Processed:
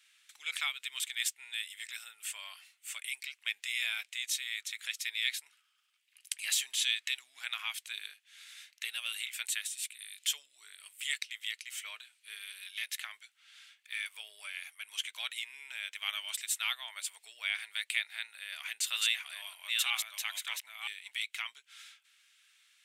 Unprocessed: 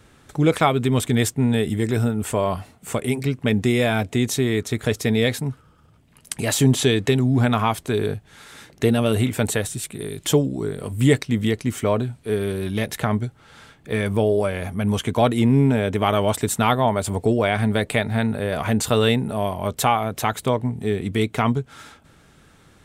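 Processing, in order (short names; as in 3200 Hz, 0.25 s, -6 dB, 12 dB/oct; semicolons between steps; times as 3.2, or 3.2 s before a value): 18.45–21.18 reverse delay 0.485 s, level -2.5 dB; ladder high-pass 2000 Hz, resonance 35%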